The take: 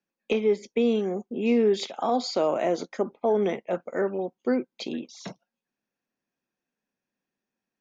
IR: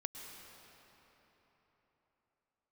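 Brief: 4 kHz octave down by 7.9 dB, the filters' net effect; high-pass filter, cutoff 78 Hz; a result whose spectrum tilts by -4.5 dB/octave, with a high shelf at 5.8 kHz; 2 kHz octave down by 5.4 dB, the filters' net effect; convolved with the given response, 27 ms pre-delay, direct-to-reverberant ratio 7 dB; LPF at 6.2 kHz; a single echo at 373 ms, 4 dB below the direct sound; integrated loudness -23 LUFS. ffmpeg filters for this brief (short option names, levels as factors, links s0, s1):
-filter_complex "[0:a]highpass=78,lowpass=6200,equalizer=f=2000:t=o:g=-4.5,equalizer=f=4000:t=o:g=-4.5,highshelf=f=5800:g=-8.5,aecho=1:1:373:0.631,asplit=2[s0][s1];[1:a]atrim=start_sample=2205,adelay=27[s2];[s1][s2]afir=irnorm=-1:irlink=0,volume=0.531[s3];[s0][s3]amix=inputs=2:normalize=0,volume=1.26"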